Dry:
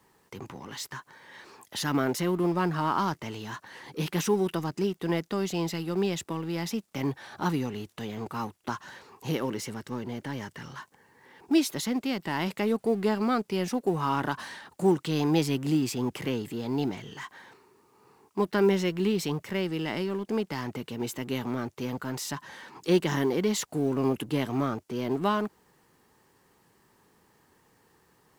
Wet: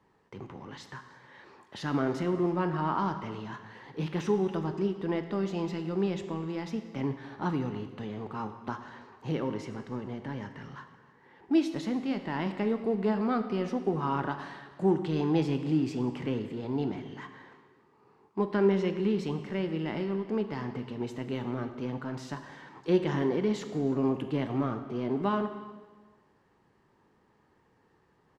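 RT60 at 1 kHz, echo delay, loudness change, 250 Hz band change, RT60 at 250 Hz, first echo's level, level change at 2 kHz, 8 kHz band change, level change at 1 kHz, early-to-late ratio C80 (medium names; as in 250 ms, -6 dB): 1.4 s, 308 ms, -2.0 dB, -1.5 dB, 1.4 s, -22.0 dB, -5.0 dB, under -15 dB, -3.0 dB, 10.5 dB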